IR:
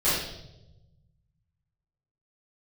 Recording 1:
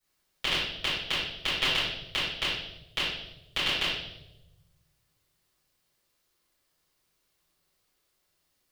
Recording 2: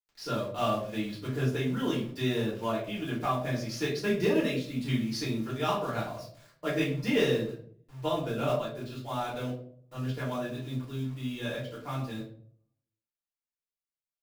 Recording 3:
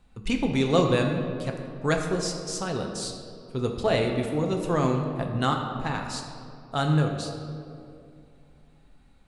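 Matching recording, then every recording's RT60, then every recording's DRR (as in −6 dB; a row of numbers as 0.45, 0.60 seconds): 1; 0.95, 0.55, 2.5 seconds; −13.0, −7.0, 2.0 decibels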